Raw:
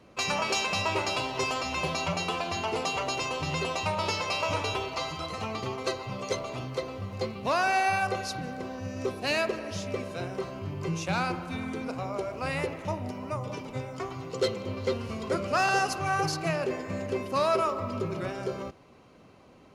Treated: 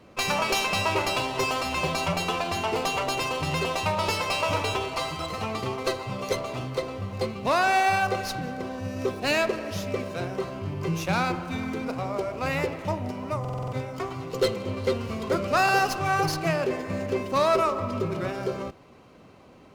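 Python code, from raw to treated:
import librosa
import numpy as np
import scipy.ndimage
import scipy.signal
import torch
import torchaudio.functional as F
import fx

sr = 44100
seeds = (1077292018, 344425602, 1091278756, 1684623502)

y = fx.buffer_glitch(x, sr, at_s=(13.4,), block=2048, repeats=6)
y = fx.running_max(y, sr, window=3)
y = F.gain(torch.from_numpy(y), 3.5).numpy()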